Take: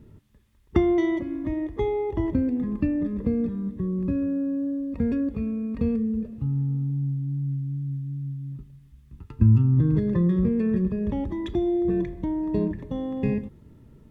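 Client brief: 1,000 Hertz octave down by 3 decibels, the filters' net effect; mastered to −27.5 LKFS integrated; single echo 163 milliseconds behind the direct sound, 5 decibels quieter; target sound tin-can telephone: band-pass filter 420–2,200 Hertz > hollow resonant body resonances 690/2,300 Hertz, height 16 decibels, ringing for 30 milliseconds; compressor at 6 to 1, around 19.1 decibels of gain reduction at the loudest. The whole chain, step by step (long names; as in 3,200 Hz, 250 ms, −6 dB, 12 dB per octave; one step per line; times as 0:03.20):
parametric band 1,000 Hz −3.5 dB
downward compressor 6 to 1, threshold −34 dBFS
band-pass filter 420–2,200 Hz
single-tap delay 163 ms −5 dB
hollow resonant body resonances 690/2,300 Hz, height 16 dB, ringing for 30 ms
level +13.5 dB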